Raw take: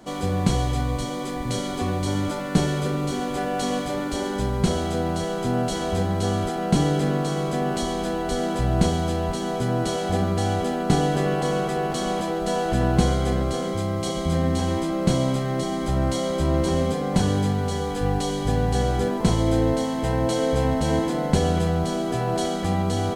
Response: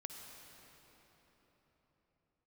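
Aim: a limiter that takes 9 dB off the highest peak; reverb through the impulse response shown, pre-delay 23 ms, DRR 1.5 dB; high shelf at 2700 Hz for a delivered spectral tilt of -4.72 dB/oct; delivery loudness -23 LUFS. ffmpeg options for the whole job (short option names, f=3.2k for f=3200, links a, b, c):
-filter_complex "[0:a]highshelf=f=2.7k:g=8.5,alimiter=limit=-13dB:level=0:latency=1,asplit=2[a][b];[1:a]atrim=start_sample=2205,adelay=23[c];[b][c]afir=irnorm=-1:irlink=0,volume=2dB[d];[a][d]amix=inputs=2:normalize=0,volume=-2dB"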